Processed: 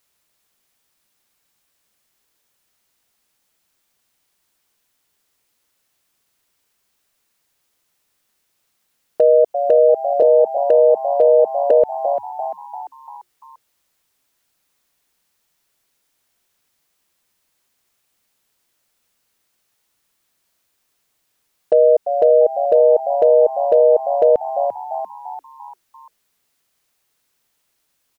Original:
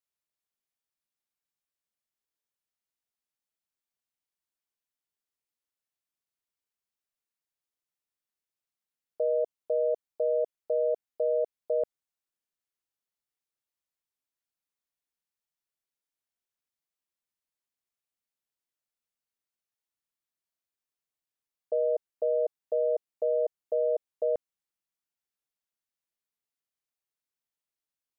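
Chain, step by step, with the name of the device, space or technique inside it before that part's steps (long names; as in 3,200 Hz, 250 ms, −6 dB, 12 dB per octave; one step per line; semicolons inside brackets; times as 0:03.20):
0:10.22–0:11.71: Butterworth high-pass 180 Hz 72 dB per octave
echo with shifted repeats 344 ms, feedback 50%, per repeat +87 Hz, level −15 dB
loud club master (downward compressor 1.5 to 1, threshold −33 dBFS, peak gain reduction 3.5 dB; hard clipping −22.5 dBFS, distortion −40 dB; boost into a limiter +26.5 dB)
level −4 dB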